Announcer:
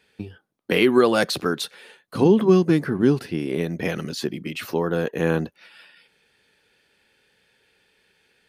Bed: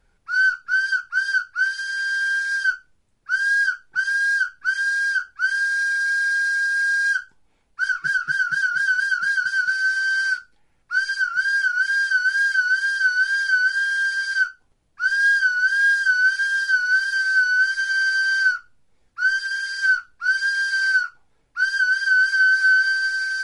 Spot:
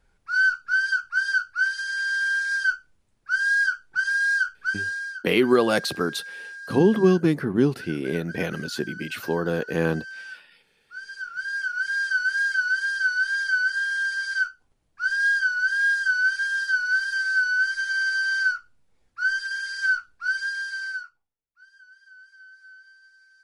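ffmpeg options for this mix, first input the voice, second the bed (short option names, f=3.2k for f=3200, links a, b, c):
-filter_complex "[0:a]adelay=4550,volume=-2dB[a];[1:a]volume=12dB,afade=t=out:st=4.51:d=0.72:silence=0.158489,afade=t=in:st=10.96:d=1.18:silence=0.199526,afade=t=out:st=20.13:d=1.22:silence=0.0375837[b];[a][b]amix=inputs=2:normalize=0"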